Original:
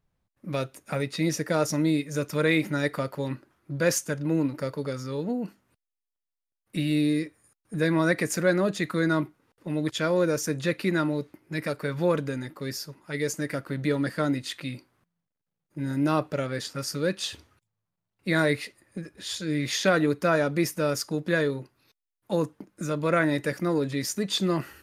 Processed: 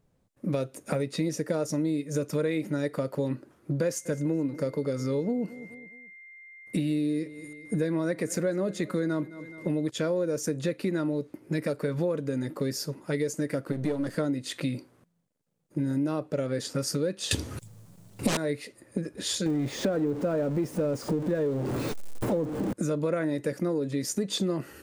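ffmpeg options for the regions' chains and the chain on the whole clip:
-filter_complex "[0:a]asettb=1/sr,asplit=3[s0][s1][s2];[s0]atrim=end=3.844[s3];[s1]atrim=start=3.84:end=9.88,asetpts=PTS-STARTPTS,afade=t=in:d=0.004:c=qsin,afade=t=out:st=6.036:d=0.004:c=qsin,aeval=exprs='val(0)+0.00355*sin(2*PI*2100*n/s)':c=same,aecho=1:1:212|424|636:0.0668|0.0267|0.0107,atrim=end_sample=266364[s4];[s2]atrim=start=9.876[s5];[s3][s4]acrossfade=d=0.004:c1=hsin:c2=qsin[s6];[s6][s5]acrossfade=d=0.004:c1=qsin:c2=hsin,asettb=1/sr,asplit=3[s7][s8][s9];[s7]atrim=end=13.724[s10];[s8]atrim=start=13.72:end=14.15,asetpts=PTS-STARTPTS,afade=t=in:d=0.004:c=qsin,afade=t=out:st=0.426:d=0.004:c=qsin,aeval=exprs='if(lt(val(0),0),0.251*val(0),val(0))':c=same,acompressor=mode=upward:threshold=0.0282:ratio=2.5:attack=3.2:release=140:knee=2.83:detection=peak[s11];[s9]atrim=start=14.146[s12];[s10][s11]acrossfade=d=0.004:c1=hsin:c2=qsin[s13];[s13][s12]acrossfade=d=0.004:c1=qsin:c2=hsin,asettb=1/sr,asplit=3[s14][s15][s16];[s14]atrim=end=17.314[s17];[s15]atrim=start=17.31:end=18.37,asetpts=PTS-STARTPTS,afade=t=in:d=0.004:c=qsin,afade=t=out:st=1.056:d=0.004:c=qsin,bass=f=250:g=7,treble=f=4000:g=5,aeval=exprs='0.355*sin(PI/2*7.08*val(0)/0.355)':c=same[s18];[s16]atrim=start=18.366[s19];[s17][s18]acrossfade=d=0.004:c1=hsin:c2=qsin[s20];[s20][s19]acrossfade=d=0.004:c1=qsin:c2=hsin,asettb=1/sr,asplit=3[s21][s22][s23];[s21]atrim=end=19.464[s24];[s22]atrim=start=19.46:end=22.73,asetpts=PTS-STARTPTS,afade=t=in:d=0.004:c=qsin,afade=t=out:st=3.266:d=0.004:c=qsin,aeval=exprs='val(0)+0.5*0.0596*sgn(val(0))':c=same,deesser=0.85[s25];[s23]atrim=start=22.726[s26];[s24][s25]acrossfade=d=0.004:c1=hsin:c2=qsin[s27];[s27][s26]acrossfade=d=0.004:c1=qsin:c2=hsin,equalizer=f=125:t=o:w=1:g=5,equalizer=f=250:t=o:w=1:g=7,equalizer=f=500:t=o:w=1:g=9,equalizer=f=8000:t=o:w=1:g=6,acompressor=threshold=0.0398:ratio=6,volume=1.26"

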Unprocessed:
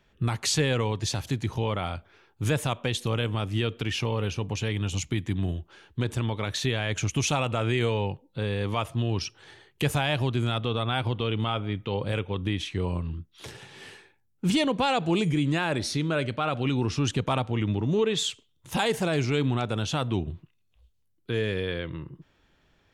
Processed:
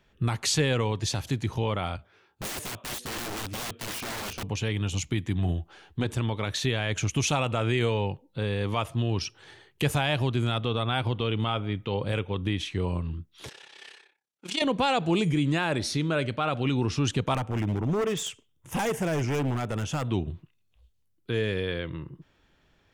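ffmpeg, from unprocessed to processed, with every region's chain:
-filter_complex "[0:a]asettb=1/sr,asplit=3[s0][s1][s2];[s0]atrim=end=1.974[s3];[s1]atrim=start=1.97:end=4.43,asetpts=PTS-STARTPTS,afade=t=in:d=0.004:c=qsin,afade=t=out:st=2.456:d=0.004:c=qsin,highpass=f=49:w=0.5412,highpass=f=49:w=1.3066,flanger=delay=16:depth=2.5:speed=1.8,aeval=exprs='(mod(31.6*val(0)+1,2)-1)/31.6':c=same[s4];[s2]atrim=start=4.426[s5];[s3][s4]acrossfade=d=0.004:c1=hsin:c2=qsin[s6];[s6][s5]acrossfade=d=0.004:c1=qsin:c2=hsin,asettb=1/sr,asplit=3[s7][s8][s9];[s7]atrim=end=5.344[s10];[s8]atrim=start=5.34:end=6.06,asetpts=PTS-STARTPTS,afade=t=in:d=0.004:c=qsin,afade=t=out:st=0.716:d=0.004:c=qsin,equalizer=f=770:w=6.4:g=9,asplit=2[s11][s12];[s12]adelay=12,volume=0.398[s13];[s11][s13]amix=inputs=2:normalize=0,atrim=end_sample=31752[s14];[s9]atrim=start=6.056[s15];[s10][s14]acrossfade=d=0.004:c1=hsin:c2=qsin[s16];[s16][s15]acrossfade=d=0.004:c1=qsin:c2=hsin,asettb=1/sr,asplit=3[s17][s18][s19];[s17]atrim=end=13.494[s20];[s18]atrim=start=13.49:end=14.62,asetpts=PTS-STARTPTS,afade=t=in:d=0.004:c=qsin,afade=t=out:st=1.126:d=0.004:c=qsin,aemphasis=mode=production:type=75fm,tremolo=f=33:d=0.788,highpass=460,lowpass=4400[s21];[s19]atrim=start=14.616[s22];[s20][s21]acrossfade=d=0.004:c1=hsin:c2=qsin[s23];[s23][s22]acrossfade=d=0.004:c1=qsin:c2=hsin,asettb=1/sr,asplit=3[s24][s25][s26];[s24]atrim=end=17.344[s27];[s25]atrim=start=17.34:end=20.05,asetpts=PTS-STARTPTS,afade=t=in:d=0.004:c=qsin,afade=t=out:st=2.706:d=0.004:c=qsin,aeval=exprs='0.0891*(abs(mod(val(0)/0.0891+3,4)-2)-1)':c=same,equalizer=f=4100:t=o:w=0.48:g=-14[s28];[s26]atrim=start=20.046[s29];[s27][s28]acrossfade=d=0.004:c1=hsin:c2=qsin[s30];[s30][s29]acrossfade=d=0.004:c1=qsin:c2=hsin"

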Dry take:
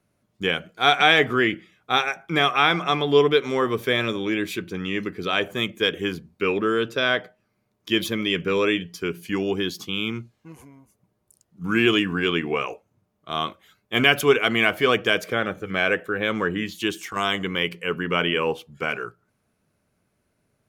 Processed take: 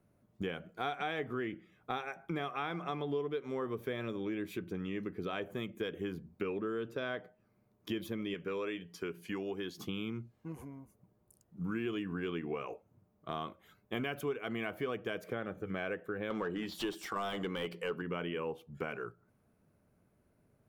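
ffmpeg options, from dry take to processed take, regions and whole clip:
-filter_complex "[0:a]asettb=1/sr,asplit=3[s0][s1][s2];[s0]atrim=end=8.344[s3];[s1]atrim=start=8.34:end=9.78,asetpts=PTS-STARTPTS,afade=t=in:d=0.004:c=qsin,afade=t=out:st=1.436:d=0.004:c=qsin,highpass=45,lowshelf=f=350:g=-10.5,acrossover=split=10000[s4][s5];[s5]acompressor=threshold=0.00112:ratio=4:attack=1:release=60[s6];[s4][s6]amix=inputs=2:normalize=0[s7];[s2]atrim=start=9.776[s8];[s3][s7]acrossfade=d=0.004:c1=hsin:c2=qsin[s9];[s9][s8]acrossfade=d=0.004:c1=qsin:c2=hsin,asettb=1/sr,asplit=3[s10][s11][s12];[s10]atrim=end=16.304[s13];[s11]atrim=start=16.3:end=18.02,asetpts=PTS-STARTPTS,afade=t=in:d=0.004:c=qsin,afade=t=out:st=1.716:d=0.004:c=qsin,highshelf=f=3100:t=q:w=1.5:g=9.5,bandreject=f=6500:w=9.1,asplit=2[s14][s15];[s15]highpass=f=720:p=1,volume=7.94,asoftclip=type=tanh:threshold=0.473[s16];[s14][s16]amix=inputs=2:normalize=0,lowpass=f=1700:p=1,volume=0.501[s17];[s12]atrim=start=18.016[s18];[s13][s17]acrossfade=d=0.004:c1=hsin:c2=qsin[s19];[s19][s18]acrossfade=d=0.004:c1=qsin:c2=hsin,equalizer=f=5100:w=0.31:g=-12,acompressor=threshold=0.0126:ratio=4,volume=1.12"

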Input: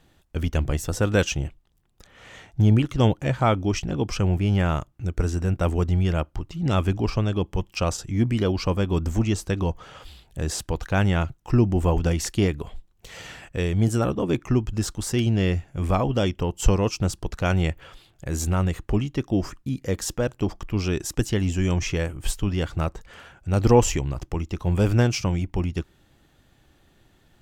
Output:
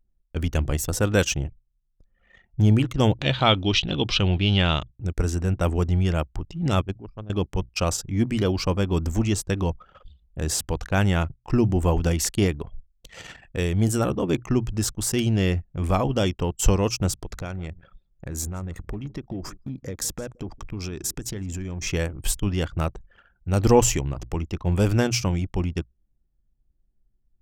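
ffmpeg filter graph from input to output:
-filter_complex "[0:a]asettb=1/sr,asplit=3[s0][s1][s2];[s0]atrim=end=3.194[s3];[s1]atrim=start=3.19:end=4.91,asetpts=PTS-STARTPTS,afade=t=in:d=0.004:c=qsin,afade=t=out:st=1.716:d=0.004:c=qsin,equalizer=f=2900:t=o:w=0.43:g=6,acompressor=mode=upward:threshold=0.0398:ratio=2.5:attack=3.2:release=140:knee=2.83:detection=peak,lowpass=f=3800:t=q:w=7.4[s4];[s2]atrim=start=4.906[s5];[s3][s4]acrossfade=d=0.004:c1=hsin:c2=qsin[s6];[s6][s5]acrossfade=d=0.004:c1=qsin:c2=hsin,asettb=1/sr,asplit=3[s7][s8][s9];[s7]atrim=end=6.814[s10];[s8]atrim=start=6.81:end=7.3,asetpts=PTS-STARTPTS,afade=t=in:d=0.004:c=qsin,afade=t=out:st=0.486:d=0.004:c=qsin,agate=range=0.158:threshold=0.112:ratio=16:release=100:detection=peak,equalizer=f=2000:w=4.6:g=-5[s11];[s9]atrim=start=7.296[s12];[s10][s11]acrossfade=d=0.004:c1=hsin:c2=qsin[s13];[s13][s12]acrossfade=d=0.004:c1=qsin:c2=hsin,asettb=1/sr,asplit=3[s14][s15][s16];[s14]atrim=end=17.134[s17];[s15]atrim=start=17.13:end=21.87,asetpts=PTS-STARTPTS,afade=t=in:d=0.004:c=qsin,afade=t=out:st=4.736:d=0.004:c=qsin,bandreject=f=2900:w=9.1,acompressor=threshold=0.0447:ratio=10:attack=3.2:release=140:knee=1:detection=peak,aecho=1:1:165|330|495:0.141|0.0509|0.0183,atrim=end_sample=209034[s18];[s16]atrim=start=21.866[s19];[s17][s18]acrossfade=d=0.004:c1=hsin:c2=qsin[s20];[s20][s19]acrossfade=d=0.004:c1=qsin:c2=hsin,bandreject=f=60:t=h:w=6,bandreject=f=120:t=h:w=6,anlmdn=0.631,highshelf=f=7000:g=9.5"

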